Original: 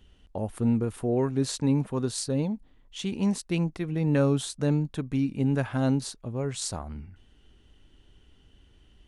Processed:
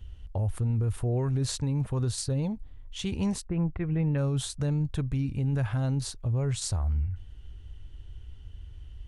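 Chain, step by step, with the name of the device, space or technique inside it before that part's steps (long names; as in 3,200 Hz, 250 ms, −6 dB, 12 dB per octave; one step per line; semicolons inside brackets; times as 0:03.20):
car stereo with a boomy subwoofer (low shelf with overshoot 140 Hz +13.5 dB, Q 1.5; brickwall limiter −21.5 dBFS, peak gain reduction 10.5 dB)
0:03.44–0:04.17: low-pass filter 1,600 Hz → 3,400 Hz 24 dB per octave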